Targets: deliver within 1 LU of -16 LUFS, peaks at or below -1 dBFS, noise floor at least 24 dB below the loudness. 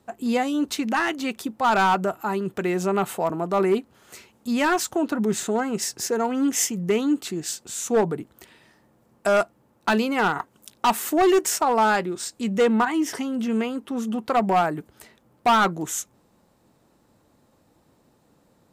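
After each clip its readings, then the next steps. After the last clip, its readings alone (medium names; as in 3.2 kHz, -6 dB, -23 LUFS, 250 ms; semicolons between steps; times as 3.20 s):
clipped samples 1.3%; clipping level -14.0 dBFS; loudness -23.5 LUFS; peak level -14.0 dBFS; loudness target -16.0 LUFS
-> clip repair -14 dBFS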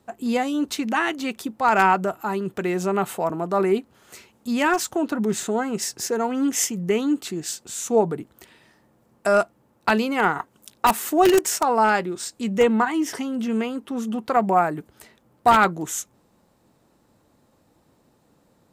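clipped samples 0.0%; loudness -22.5 LUFS; peak level -5.0 dBFS; loudness target -16.0 LUFS
-> trim +6.5 dB; peak limiter -1 dBFS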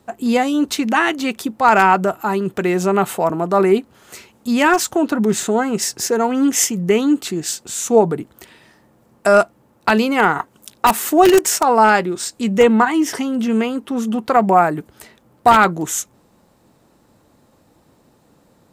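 loudness -16.5 LUFS; peak level -1.0 dBFS; noise floor -56 dBFS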